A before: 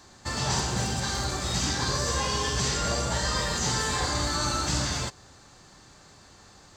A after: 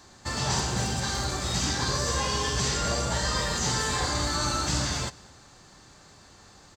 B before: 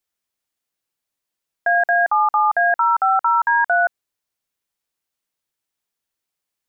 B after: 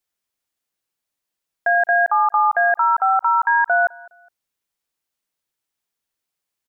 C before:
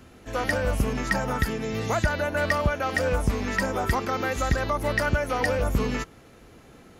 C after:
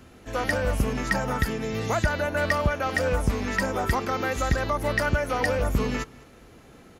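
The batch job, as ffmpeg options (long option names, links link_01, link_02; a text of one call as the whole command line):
ffmpeg -i in.wav -af "aecho=1:1:207|414:0.0631|0.0196" out.wav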